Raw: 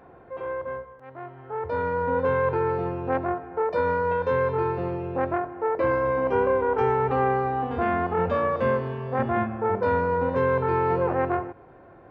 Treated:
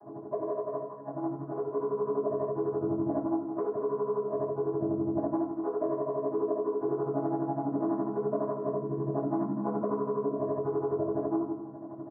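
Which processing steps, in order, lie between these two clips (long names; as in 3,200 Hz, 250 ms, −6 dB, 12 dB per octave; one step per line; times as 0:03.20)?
channel vocoder with a chord as carrier minor triad, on C#3
Butterworth low-pass 1,200 Hz 36 dB per octave
comb filter 2.9 ms, depth 93%
downward compressor 6 to 1, threshold −36 dBFS, peak gain reduction 19 dB
amplitude tremolo 12 Hz, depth 78%
repeating echo 96 ms, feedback 58%, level −14.5 dB
convolution reverb RT60 0.65 s, pre-delay 3 ms, DRR −6.5 dB
level +5 dB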